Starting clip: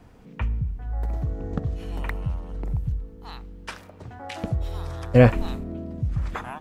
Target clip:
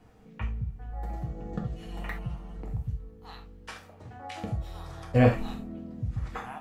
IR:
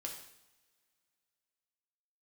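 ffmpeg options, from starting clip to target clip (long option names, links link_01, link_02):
-filter_complex "[0:a]asettb=1/sr,asplit=3[link_01][link_02][link_03];[link_01]atrim=end=0.904[link_04];[link_02]atrim=start=0.9:end=2.6,asetpts=PTS-STARTPTS,afade=type=in:duration=0.004:curve=qsin,afade=type=out:start_time=1.696:duration=0.004:curve=qsin,aecho=1:1:5.8:0.63,atrim=end_sample=74970[link_05];[link_03]atrim=start=2.596[link_06];[link_04][link_05]acrossfade=duration=0.004:curve1=hsin:curve2=qsin[link_07];[link_07][link_06]acrossfade=duration=0.004:curve1=qsin:curve2=hsin[link_08];[1:a]atrim=start_sample=2205,afade=type=out:start_time=0.17:duration=0.01,atrim=end_sample=7938,asetrate=61740,aresample=44100[link_09];[link_08][link_09]afir=irnorm=-1:irlink=0"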